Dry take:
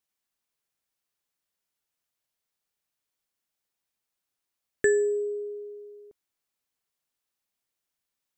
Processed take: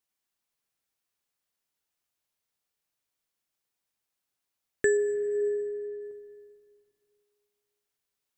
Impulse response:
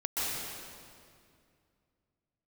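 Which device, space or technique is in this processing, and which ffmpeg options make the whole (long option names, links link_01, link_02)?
ducked reverb: -filter_complex "[0:a]asettb=1/sr,asplit=3[link_01][link_02][link_03];[link_01]atrim=end=4.974[link_04];[link_02]atrim=start=4.97:end=6.02,asetpts=PTS-STARTPTS,afade=type=in:duration=0.004:curve=qsin,afade=type=out:start_time=1.046:duration=0.004:curve=qsin,lowpass=5200[link_05];[link_03]atrim=start=6.016[link_06];[link_04][link_05]acrossfade=duration=0.004:curve1=hsin:curve2=qsin[link_07];[link_07][link_06]acrossfade=duration=0.004:curve1=qsin:curve2=hsin,asplit=3[link_08][link_09][link_10];[1:a]atrim=start_sample=2205[link_11];[link_09][link_11]afir=irnorm=-1:irlink=0[link_12];[link_10]apad=whole_len=369289[link_13];[link_12][link_13]sidechaincompress=threshold=-32dB:ratio=8:attack=16:release=152,volume=-13.5dB[link_14];[link_08][link_14]amix=inputs=2:normalize=0,volume=-2dB"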